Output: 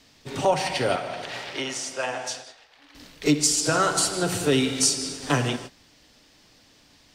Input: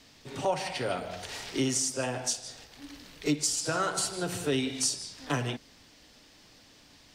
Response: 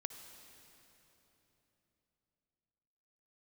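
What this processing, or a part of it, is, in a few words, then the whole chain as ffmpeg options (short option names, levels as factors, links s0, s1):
keyed gated reverb: -filter_complex "[0:a]asettb=1/sr,asplit=3[s0][s1][s2];[s0]atrim=end=0.964[s3];[s1]atrim=start=0.96:end=2.95,asetpts=PTS-STARTPTS,afade=t=in:d=0.004:c=qsin,afade=t=out:st=1.986:d=0.004:c=qsin,acrossover=split=520 3900:gain=0.126 1 0.2[s4][s5][s6];[s4][s5][s6]amix=inputs=3:normalize=0[s7];[s2]atrim=start=2.946[s8];[s3][s7]acrossfade=d=0.004:c1=hsin:c2=qsin[s9];[s9][s8]acrossfade=d=0.004:c1=qsin:c2=hsin,asplit=3[s10][s11][s12];[1:a]atrim=start_sample=2205[s13];[s11][s13]afir=irnorm=-1:irlink=0[s14];[s12]apad=whole_len=314926[s15];[s14][s15]sidechaingate=range=0.0224:threshold=0.00447:ratio=16:detection=peak,volume=1.88[s16];[s10][s16]amix=inputs=2:normalize=0"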